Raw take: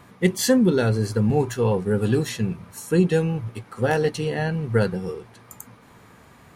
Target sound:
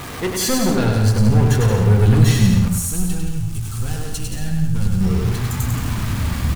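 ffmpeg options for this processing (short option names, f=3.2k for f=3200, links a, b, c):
-filter_complex "[0:a]aeval=exprs='val(0)+0.5*0.0299*sgn(val(0))':c=same,flanger=delay=2.4:depth=1.4:regen=-59:speed=0.54:shape=triangular,asoftclip=type=tanh:threshold=-24.5dB,asettb=1/sr,asplit=3[a][b][c];[a]atrim=end=2.684[d];[b]atrim=start=2.68:end=5.01,asetpts=PTS-STARTPTS,afade=t=in:d=0.004:c=qsin,afade=t=out:st=2.326:d=0.004:c=qsin,equalizer=f=125:t=o:w=1:g=-10,equalizer=f=250:t=o:w=1:g=-8,equalizer=f=500:t=o:w=1:g=-11,equalizer=f=1k:t=o:w=1:g=-9,equalizer=f=2k:t=o:w=1:g=-11,equalizer=f=4k:t=o:w=1:g=-5,equalizer=f=8k:t=o:w=1:g=5[e];[c]atrim=start=5.006[f];[d][e]acrossfade=d=0.004:c1=hsin:c2=qsin[g];[g][f]acrossfade=d=0.004:c1=qsin:c2=hsin,aecho=1:1:100|175|231.2|273.4|305.1:0.631|0.398|0.251|0.158|0.1,asubboost=boost=10.5:cutoff=140,bandreject=f=55.75:t=h:w=4,bandreject=f=111.5:t=h:w=4,bandreject=f=167.25:t=h:w=4,bandreject=f=223:t=h:w=4,bandreject=f=278.75:t=h:w=4,bandreject=f=334.5:t=h:w=4,bandreject=f=390.25:t=h:w=4,bandreject=f=446:t=h:w=4,bandreject=f=501.75:t=h:w=4,bandreject=f=557.5:t=h:w=4,bandreject=f=613.25:t=h:w=4,bandreject=f=669:t=h:w=4,bandreject=f=724.75:t=h:w=4,bandreject=f=780.5:t=h:w=4,bandreject=f=836.25:t=h:w=4,bandreject=f=892:t=h:w=4,bandreject=f=947.75:t=h:w=4,bandreject=f=1.0035k:t=h:w=4,bandreject=f=1.05925k:t=h:w=4,bandreject=f=1.115k:t=h:w=4,bandreject=f=1.17075k:t=h:w=4,bandreject=f=1.2265k:t=h:w=4,bandreject=f=1.28225k:t=h:w=4,bandreject=f=1.338k:t=h:w=4,bandreject=f=1.39375k:t=h:w=4,bandreject=f=1.4495k:t=h:w=4,bandreject=f=1.50525k:t=h:w=4,bandreject=f=1.561k:t=h:w=4,bandreject=f=1.61675k:t=h:w=4,bandreject=f=1.6725k:t=h:w=4,bandreject=f=1.72825k:t=h:w=4,bandreject=f=1.784k:t=h:w=4,bandreject=f=1.83975k:t=h:w=4,bandreject=f=1.8955k:t=h:w=4,bandreject=f=1.95125k:t=h:w=4,bandreject=f=2.007k:t=h:w=4,bandreject=f=2.06275k:t=h:w=4,bandreject=f=2.1185k:t=h:w=4,bandreject=f=2.17425k:t=h:w=4,volume=8.5dB"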